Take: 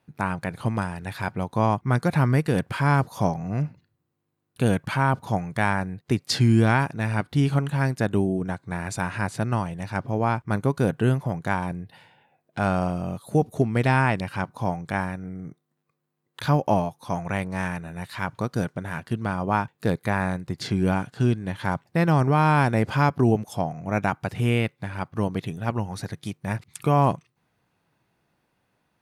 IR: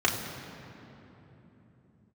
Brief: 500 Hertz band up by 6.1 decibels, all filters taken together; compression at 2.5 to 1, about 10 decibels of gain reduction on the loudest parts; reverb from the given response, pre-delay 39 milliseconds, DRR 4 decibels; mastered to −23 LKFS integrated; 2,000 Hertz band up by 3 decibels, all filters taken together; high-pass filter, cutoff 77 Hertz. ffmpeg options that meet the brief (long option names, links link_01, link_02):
-filter_complex "[0:a]highpass=77,equalizer=frequency=500:width_type=o:gain=7.5,equalizer=frequency=2000:width_type=o:gain=3.5,acompressor=threshold=-27dB:ratio=2.5,asplit=2[link_01][link_02];[1:a]atrim=start_sample=2205,adelay=39[link_03];[link_02][link_03]afir=irnorm=-1:irlink=0,volume=-17.5dB[link_04];[link_01][link_04]amix=inputs=2:normalize=0,volume=5.5dB"